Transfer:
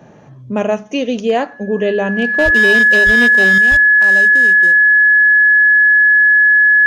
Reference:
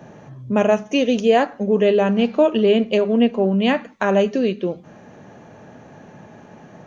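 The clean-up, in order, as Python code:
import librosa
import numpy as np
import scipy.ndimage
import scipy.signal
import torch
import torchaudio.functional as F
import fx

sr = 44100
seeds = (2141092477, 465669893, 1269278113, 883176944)

y = fx.fix_declip(x, sr, threshold_db=-6.0)
y = fx.notch(y, sr, hz=1700.0, q=30.0)
y = fx.fix_deplosive(y, sr, at_s=(2.44, 3.05, 3.7))
y = fx.fix_level(y, sr, at_s=3.58, step_db=9.0)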